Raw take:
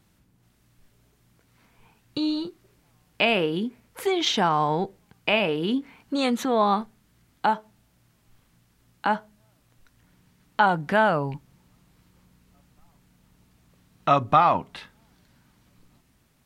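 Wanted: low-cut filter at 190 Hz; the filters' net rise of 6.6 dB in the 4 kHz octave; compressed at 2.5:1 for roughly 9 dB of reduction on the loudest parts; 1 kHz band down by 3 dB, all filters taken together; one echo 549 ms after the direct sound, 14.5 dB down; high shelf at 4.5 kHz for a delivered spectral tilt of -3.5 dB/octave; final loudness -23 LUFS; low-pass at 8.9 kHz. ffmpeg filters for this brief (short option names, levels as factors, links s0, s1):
-af "highpass=190,lowpass=8900,equalizer=f=1000:t=o:g=-4.5,equalizer=f=4000:t=o:g=7,highshelf=f=4500:g=4.5,acompressor=threshold=0.0447:ratio=2.5,aecho=1:1:549:0.188,volume=2.37"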